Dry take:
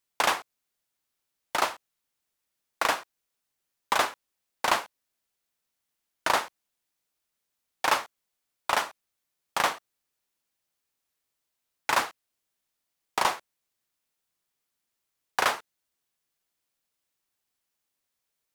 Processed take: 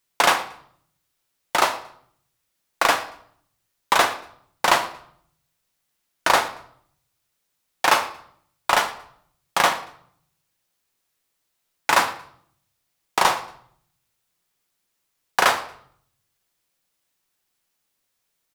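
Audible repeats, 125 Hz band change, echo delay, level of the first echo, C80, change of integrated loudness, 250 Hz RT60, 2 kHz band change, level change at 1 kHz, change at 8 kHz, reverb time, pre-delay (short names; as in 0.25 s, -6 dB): 2, +8.5 dB, 0.115 s, -21.0 dB, 15.5 dB, +7.0 dB, 0.85 s, +7.0 dB, +7.0 dB, +7.0 dB, 0.60 s, 5 ms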